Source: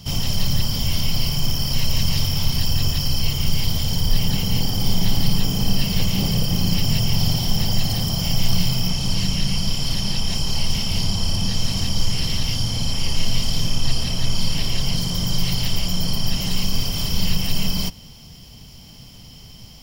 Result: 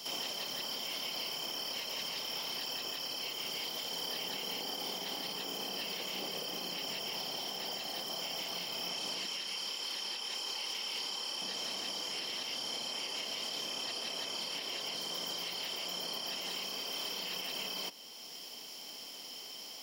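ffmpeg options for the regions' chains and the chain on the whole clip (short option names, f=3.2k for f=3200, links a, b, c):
-filter_complex "[0:a]asettb=1/sr,asplit=3[a][b][c];[a]atrim=end=9.254[d];[b]atrim=start=9.25:end=11.42,asetpts=PTS-STARTPTS,afade=t=in:d=0.004:c=qsin,afade=t=out:st=2.166:d=0.004:c=qsin,highpass=f=440:p=1,bandreject=f=670:w=5.5[e];[c]atrim=start=11.416[f];[d][e]acrossfade=d=0.004:c1=hsin:c2=qsin[g];[g][f]acrossfade=d=0.004:c1=qsin:c2=hsin,highpass=f=340:w=0.5412,highpass=f=340:w=1.3066,acrossover=split=3900[h][i];[i]acompressor=threshold=-34dB:ratio=4:attack=1:release=60[j];[h][j]amix=inputs=2:normalize=0,alimiter=level_in=5dB:limit=-24dB:level=0:latency=1:release=489,volume=-5dB"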